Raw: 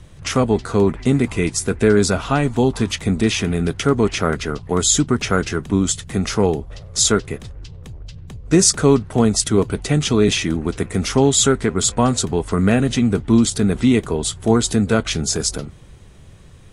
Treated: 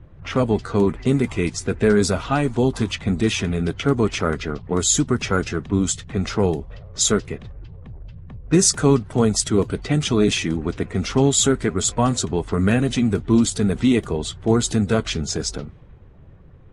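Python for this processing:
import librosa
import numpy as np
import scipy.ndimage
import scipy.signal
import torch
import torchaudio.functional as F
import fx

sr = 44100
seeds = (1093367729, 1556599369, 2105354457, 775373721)

y = fx.spec_quant(x, sr, step_db=15)
y = fx.env_lowpass(y, sr, base_hz=1300.0, full_db=-13.0)
y = F.gain(torch.from_numpy(y), -2.0).numpy()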